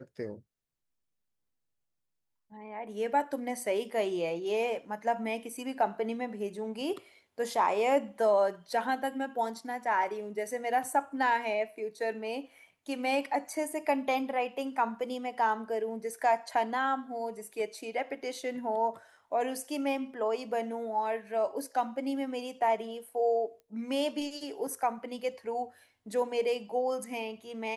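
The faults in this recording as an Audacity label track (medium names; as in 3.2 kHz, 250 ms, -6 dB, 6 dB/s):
23.600000	23.600000	pop -41 dBFS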